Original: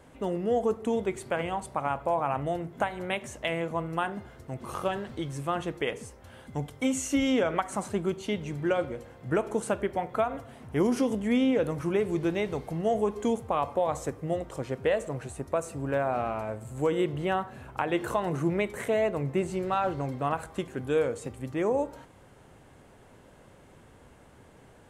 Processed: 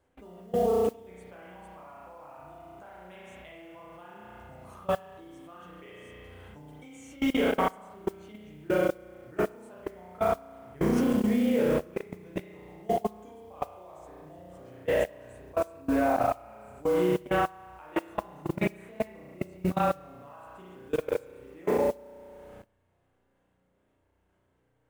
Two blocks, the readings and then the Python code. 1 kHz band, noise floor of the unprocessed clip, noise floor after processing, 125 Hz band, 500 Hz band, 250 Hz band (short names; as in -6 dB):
-2.5 dB, -55 dBFS, -72 dBFS, -4.5 dB, -1.5 dB, -1.5 dB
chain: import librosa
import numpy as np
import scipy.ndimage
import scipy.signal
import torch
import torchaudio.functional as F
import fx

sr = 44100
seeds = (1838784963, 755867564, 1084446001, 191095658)

p1 = fx.chorus_voices(x, sr, voices=4, hz=0.97, base_ms=13, depth_ms=3.0, mix_pct=45)
p2 = p1 + fx.echo_single(p1, sr, ms=73, db=-24.0, dry=0)
p3 = fx.rev_spring(p2, sr, rt60_s=1.5, pass_ms=(33,), chirp_ms=45, drr_db=-5.5)
p4 = fx.level_steps(p3, sr, step_db=24)
y = fx.mod_noise(p4, sr, seeds[0], snr_db=26)